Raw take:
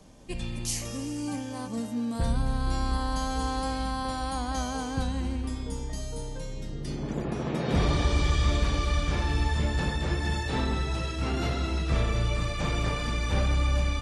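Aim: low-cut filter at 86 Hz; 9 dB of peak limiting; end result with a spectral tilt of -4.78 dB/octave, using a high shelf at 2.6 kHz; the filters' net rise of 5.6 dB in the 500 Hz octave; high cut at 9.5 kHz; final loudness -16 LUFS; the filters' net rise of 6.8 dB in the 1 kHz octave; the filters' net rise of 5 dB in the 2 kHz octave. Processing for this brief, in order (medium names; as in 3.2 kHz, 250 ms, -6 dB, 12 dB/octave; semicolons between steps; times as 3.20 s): high-pass 86 Hz; low-pass 9.5 kHz; peaking EQ 500 Hz +5 dB; peaking EQ 1 kHz +6.5 dB; peaking EQ 2 kHz +7.5 dB; treble shelf 2.6 kHz -8 dB; trim +15 dB; peak limiter -6 dBFS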